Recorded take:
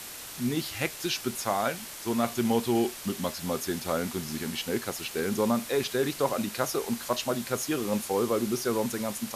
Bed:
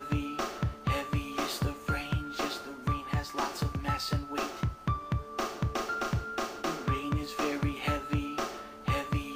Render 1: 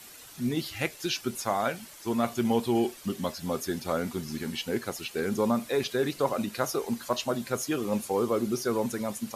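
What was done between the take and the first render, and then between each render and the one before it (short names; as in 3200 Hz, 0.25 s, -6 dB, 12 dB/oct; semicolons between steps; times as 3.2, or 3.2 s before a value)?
denoiser 10 dB, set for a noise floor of -42 dBFS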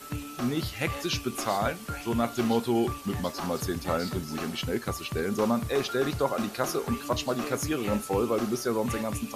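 add bed -4.5 dB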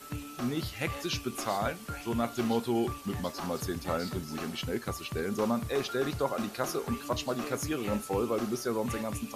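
gain -3.5 dB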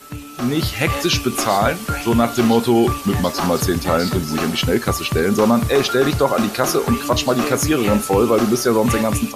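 in parallel at 0 dB: limiter -24.5 dBFS, peak gain reduction 8.5 dB; on the sum: AGC gain up to 11.5 dB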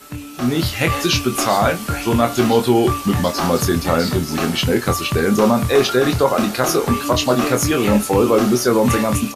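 doubler 24 ms -7 dB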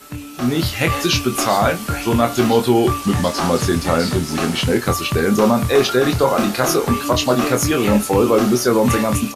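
3.02–4.77 delta modulation 64 kbps, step -26.5 dBFS; 6.18–6.74 doubler 30 ms -7.5 dB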